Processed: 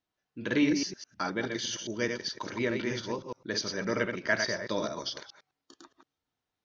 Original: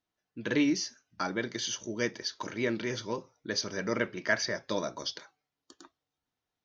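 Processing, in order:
delay that plays each chunk backwards 104 ms, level −5 dB
low-pass filter 6,700 Hz 12 dB per octave

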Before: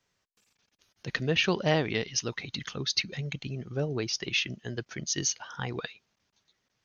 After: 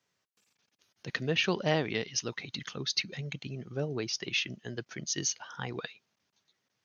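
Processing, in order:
high-pass filter 110 Hz
level −2.5 dB

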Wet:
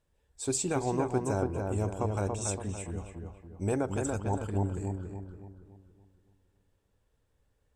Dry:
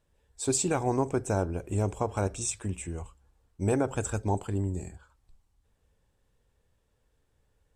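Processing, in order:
feedback echo with a low-pass in the loop 283 ms, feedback 46%, low-pass 2,000 Hz, level −3.5 dB
level −3.5 dB

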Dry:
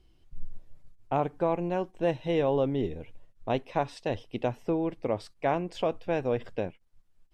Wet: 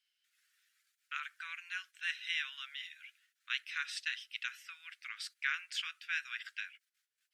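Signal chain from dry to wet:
noise gate −57 dBFS, range −11 dB
Butterworth high-pass 1,400 Hz 72 dB per octave
level +6 dB

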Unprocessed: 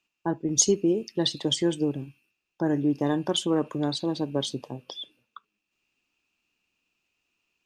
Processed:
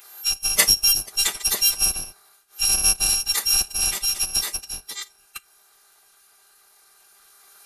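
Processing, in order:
samples in bit-reversed order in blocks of 256 samples
phase-vocoder pitch shift with formants kept −9.5 semitones
one half of a high-frequency compander encoder only
level +5.5 dB

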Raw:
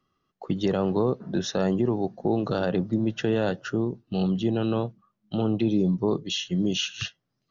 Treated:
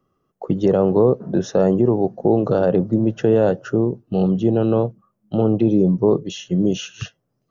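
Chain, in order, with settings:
octave-band graphic EQ 125/500/2,000/4,000 Hz +3/+7/−5/−11 dB
level +4.5 dB

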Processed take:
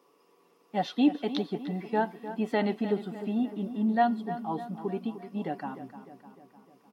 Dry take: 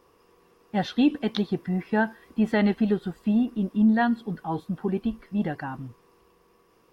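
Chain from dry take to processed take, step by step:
high-pass filter 190 Hz 24 dB per octave
parametric band 1,600 Hz −8.5 dB 0.28 octaves
comb filter 7 ms, depth 30%
dynamic equaliser 720 Hz, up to +5 dB, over −39 dBFS, Q 3
feedback echo with a low-pass in the loop 303 ms, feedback 57%, low-pass 3,200 Hz, level −12 dB
level −4 dB

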